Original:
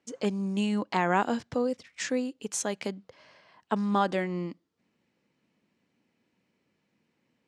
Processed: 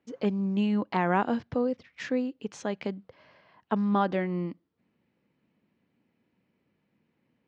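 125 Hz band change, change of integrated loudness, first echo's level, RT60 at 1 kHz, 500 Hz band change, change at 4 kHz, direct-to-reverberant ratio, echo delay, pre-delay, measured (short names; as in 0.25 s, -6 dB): +2.5 dB, +0.5 dB, none, none, 0.0 dB, -5.0 dB, none, none, none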